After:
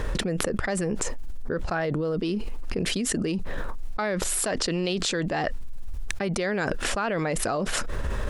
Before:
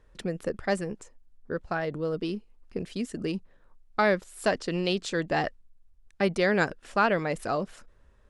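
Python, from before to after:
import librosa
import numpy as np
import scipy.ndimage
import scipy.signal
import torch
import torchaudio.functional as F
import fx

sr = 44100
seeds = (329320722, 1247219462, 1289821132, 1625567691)

y = fx.env_flatten(x, sr, amount_pct=100)
y = y * librosa.db_to_amplitude(-6.0)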